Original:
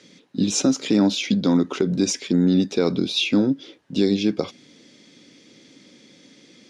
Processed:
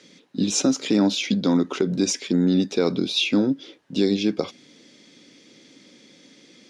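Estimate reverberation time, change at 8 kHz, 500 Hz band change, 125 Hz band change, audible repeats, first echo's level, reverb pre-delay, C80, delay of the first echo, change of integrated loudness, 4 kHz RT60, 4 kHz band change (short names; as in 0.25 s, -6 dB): none, 0.0 dB, -0.5 dB, -2.5 dB, none, none, none, none, none, -1.0 dB, none, 0.0 dB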